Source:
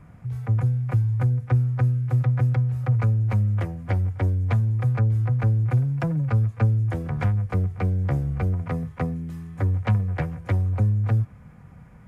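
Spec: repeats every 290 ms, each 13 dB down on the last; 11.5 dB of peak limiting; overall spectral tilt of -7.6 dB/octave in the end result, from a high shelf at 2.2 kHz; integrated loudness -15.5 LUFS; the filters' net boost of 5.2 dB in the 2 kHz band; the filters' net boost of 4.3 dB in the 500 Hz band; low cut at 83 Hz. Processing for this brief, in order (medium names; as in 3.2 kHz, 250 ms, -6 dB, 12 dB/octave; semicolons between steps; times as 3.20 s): high-pass 83 Hz; peaking EQ 500 Hz +4.5 dB; peaking EQ 2 kHz +4 dB; treble shelf 2.2 kHz +4.5 dB; peak limiter -21 dBFS; feedback delay 290 ms, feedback 22%, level -13 dB; trim +12.5 dB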